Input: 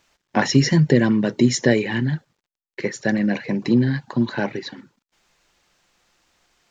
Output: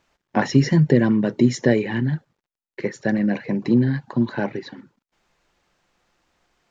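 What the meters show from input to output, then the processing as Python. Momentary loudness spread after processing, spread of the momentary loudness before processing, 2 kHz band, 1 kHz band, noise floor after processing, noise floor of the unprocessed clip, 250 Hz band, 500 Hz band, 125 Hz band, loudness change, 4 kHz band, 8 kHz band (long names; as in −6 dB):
12 LU, 12 LU, −3.5 dB, −1.0 dB, below −85 dBFS, below −85 dBFS, 0.0 dB, −0.5 dB, 0.0 dB, −0.5 dB, −7.0 dB, can't be measured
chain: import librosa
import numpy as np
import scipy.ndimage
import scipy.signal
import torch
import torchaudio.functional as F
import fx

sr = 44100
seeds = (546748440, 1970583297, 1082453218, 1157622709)

y = fx.high_shelf(x, sr, hz=2400.0, db=-9.5)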